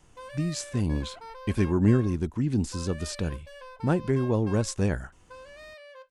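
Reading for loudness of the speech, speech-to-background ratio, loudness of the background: -28.0 LUFS, 17.5 dB, -45.5 LUFS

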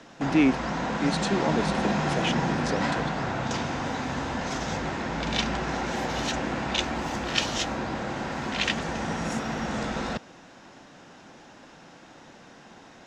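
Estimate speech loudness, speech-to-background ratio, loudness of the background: -28.5 LUFS, 0.0 dB, -28.5 LUFS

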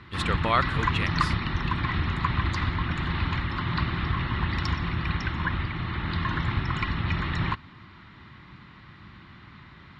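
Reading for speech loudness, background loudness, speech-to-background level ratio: -28.5 LUFS, -28.0 LUFS, -0.5 dB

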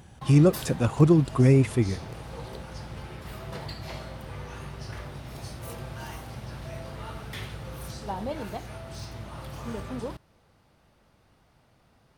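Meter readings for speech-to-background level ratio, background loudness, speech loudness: 17.0 dB, -38.5 LUFS, -21.5 LUFS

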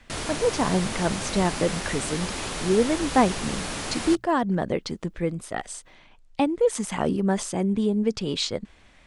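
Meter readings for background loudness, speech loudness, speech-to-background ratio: -31.0 LUFS, -26.0 LUFS, 5.0 dB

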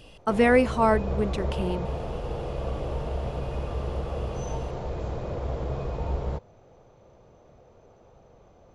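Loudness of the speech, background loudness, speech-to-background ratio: -24.5 LUFS, -32.5 LUFS, 8.0 dB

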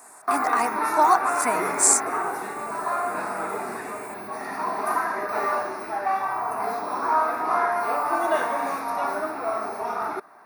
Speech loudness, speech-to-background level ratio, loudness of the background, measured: -22.0 LUFS, 4.0 dB, -26.0 LUFS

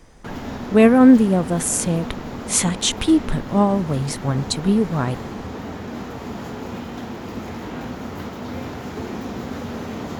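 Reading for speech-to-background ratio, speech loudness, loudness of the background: 13.5 dB, -18.0 LUFS, -31.5 LUFS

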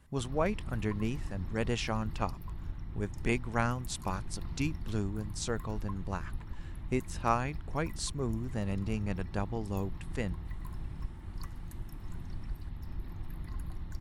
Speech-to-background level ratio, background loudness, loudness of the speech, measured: 8.5 dB, -44.0 LUFS, -35.5 LUFS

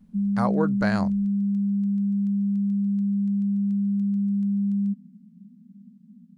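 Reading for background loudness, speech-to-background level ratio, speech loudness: -24.5 LUFS, -4.5 dB, -29.0 LUFS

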